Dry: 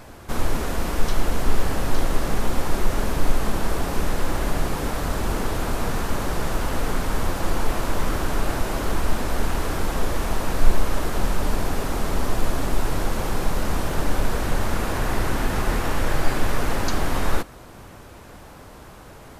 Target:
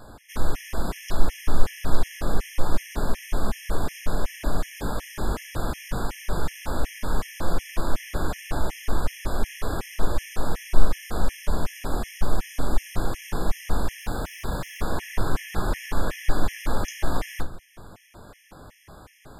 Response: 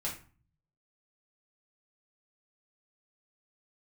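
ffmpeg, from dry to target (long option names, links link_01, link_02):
-filter_complex "[0:a]asettb=1/sr,asplit=3[link_01][link_02][link_03];[link_01]atrim=end=14.014[link_04];[link_02]atrim=start=14.01:end=14.81,asetpts=PTS-STARTPTS,afade=type=in:duration=0.004:curve=qsin,afade=type=out:start_time=0.796:duration=0.004:curve=qsin,aeval=exprs='0.0944*(abs(mod(val(0)/0.0944+3,4)-2)-1)':channel_layout=same[link_05];[link_03]atrim=start=14.806[link_06];[link_04][link_05]acrossfade=duration=0.004:curve1=hsin:curve2=qsin[link_07];[link_07][link_06]acrossfade=duration=0.004:curve1=qsin:curve2=hsin,asplit=2[link_08][link_09];[1:a]atrim=start_sample=2205,adelay=17[link_10];[link_09][link_10]afir=irnorm=-1:irlink=0,volume=-9dB[link_11];[link_08][link_11]amix=inputs=2:normalize=0,afftfilt=real='re*gt(sin(2*PI*2.7*pts/sr)*(1-2*mod(floor(b*sr/1024/1700),2)),0)':imag='im*gt(sin(2*PI*2.7*pts/sr)*(1-2*mod(floor(b*sr/1024/1700),2)),0)':win_size=1024:overlap=0.75,volume=-3dB"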